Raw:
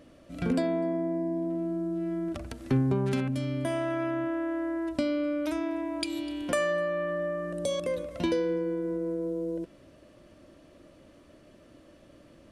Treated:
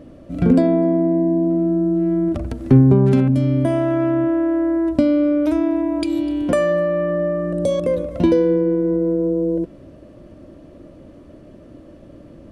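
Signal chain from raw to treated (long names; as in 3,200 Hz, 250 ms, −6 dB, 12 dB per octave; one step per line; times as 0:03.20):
tilt shelving filter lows +7.5 dB, about 930 Hz
level +7.5 dB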